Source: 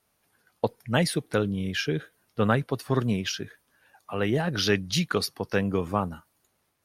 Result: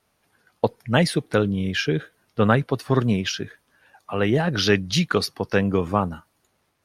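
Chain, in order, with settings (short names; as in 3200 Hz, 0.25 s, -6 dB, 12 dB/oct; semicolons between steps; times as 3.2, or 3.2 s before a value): high shelf 9700 Hz -11 dB; gain +5 dB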